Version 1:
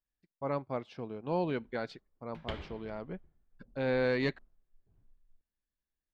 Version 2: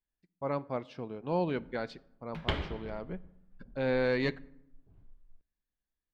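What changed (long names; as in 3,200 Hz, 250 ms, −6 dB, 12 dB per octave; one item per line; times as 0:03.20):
background +8.0 dB
reverb: on, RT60 0.80 s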